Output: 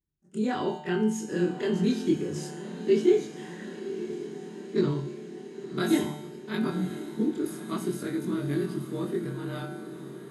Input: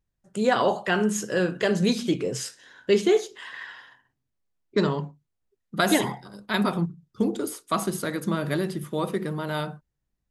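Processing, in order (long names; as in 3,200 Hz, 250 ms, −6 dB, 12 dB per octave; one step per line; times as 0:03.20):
every overlapping window played backwards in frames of 56 ms
high-pass filter 46 Hz
low shelf with overshoot 450 Hz +6 dB, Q 3
tuned comb filter 150 Hz, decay 1 s, harmonics all, mix 80%
feedback delay with all-pass diffusion 1,021 ms, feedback 69%, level −12 dB
level +5.5 dB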